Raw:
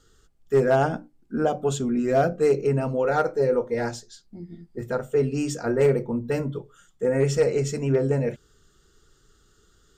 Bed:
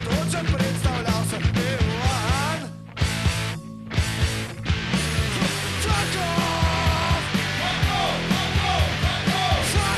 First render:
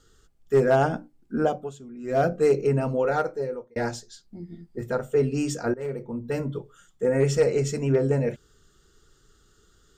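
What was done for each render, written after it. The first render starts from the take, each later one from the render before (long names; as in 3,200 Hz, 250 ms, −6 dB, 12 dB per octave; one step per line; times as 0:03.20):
0:01.46–0:02.25: duck −17 dB, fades 0.26 s
0:03.00–0:03.76: fade out
0:05.74–0:06.58: fade in, from −19 dB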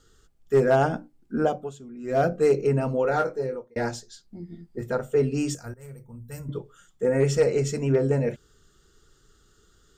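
0:03.11–0:03.58: double-tracking delay 23 ms −6 dB
0:05.55–0:06.49: drawn EQ curve 110 Hz 0 dB, 230 Hz −13 dB, 330 Hz −19 dB, 1,200 Hz −11 dB, 3,900 Hz −10 dB, 10,000 Hz +10 dB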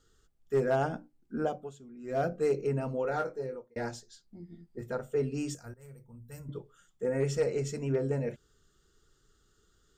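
level −8 dB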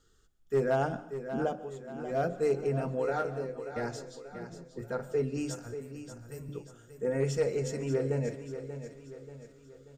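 repeating echo 585 ms, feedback 46%, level −10.5 dB
dense smooth reverb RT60 0.6 s, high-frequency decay 0.95×, pre-delay 115 ms, DRR 16.5 dB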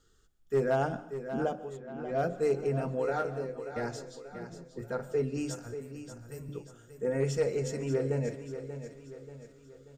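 0:01.76–0:02.17: low-pass filter 2,900 Hz → 4,600 Hz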